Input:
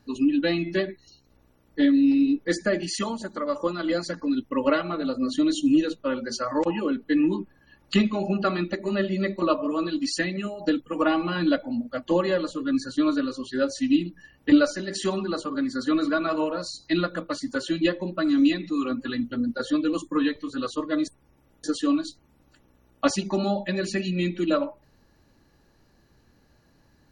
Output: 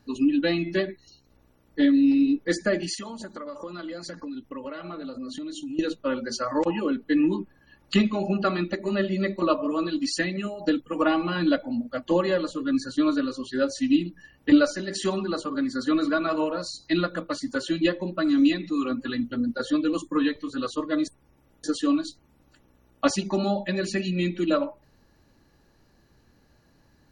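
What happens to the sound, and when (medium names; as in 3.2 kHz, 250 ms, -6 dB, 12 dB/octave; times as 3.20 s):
2.94–5.79 s: compression, threshold -33 dBFS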